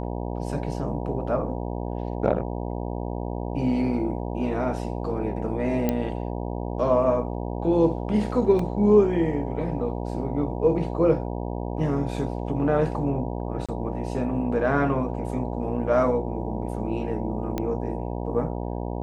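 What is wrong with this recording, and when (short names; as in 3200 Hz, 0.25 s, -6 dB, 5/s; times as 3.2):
buzz 60 Hz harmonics 16 -30 dBFS
5.89 pop -11 dBFS
8.59 gap 3.3 ms
13.66–13.69 gap 26 ms
17.58 pop -14 dBFS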